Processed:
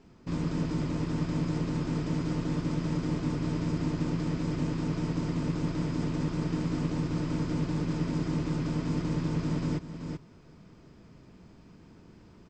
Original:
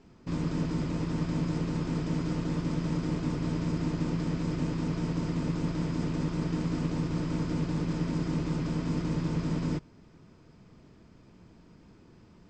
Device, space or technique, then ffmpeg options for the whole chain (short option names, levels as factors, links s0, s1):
ducked delay: -filter_complex "[0:a]asplit=3[s0][s1][s2];[s1]adelay=381,volume=0.708[s3];[s2]apad=whole_len=567862[s4];[s3][s4]sidechaincompress=threshold=0.0141:ratio=8:attack=20:release=585[s5];[s0][s5]amix=inputs=2:normalize=0"